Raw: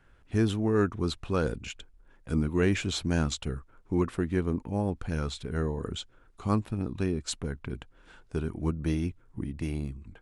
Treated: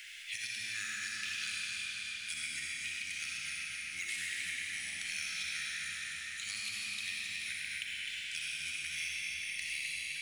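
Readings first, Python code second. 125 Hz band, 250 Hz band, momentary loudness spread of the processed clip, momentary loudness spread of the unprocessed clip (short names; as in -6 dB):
-32.5 dB, -34.5 dB, 2 LU, 13 LU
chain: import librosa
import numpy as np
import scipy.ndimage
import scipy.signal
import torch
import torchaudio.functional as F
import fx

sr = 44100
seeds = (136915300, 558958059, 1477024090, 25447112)

y = scipy.signal.sosfilt(scipy.signal.ellip(4, 1.0, 50, 2100.0, 'highpass', fs=sr, output='sos'), x)
y = fx.over_compress(y, sr, threshold_db=-51.0, ratio=-0.5)
y = fx.mod_noise(y, sr, seeds[0], snr_db=25)
y = fx.echo_feedback(y, sr, ms=256, feedback_pct=51, wet_db=-6)
y = fx.rev_freeverb(y, sr, rt60_s=3.2, hf_ratio=0.85, predelay_ms=20, drr_db=-5.5)
y = fx.band_squash(y, sr, depth_pct=70)
y = y * 10.0 ** (5.0 / 20.0)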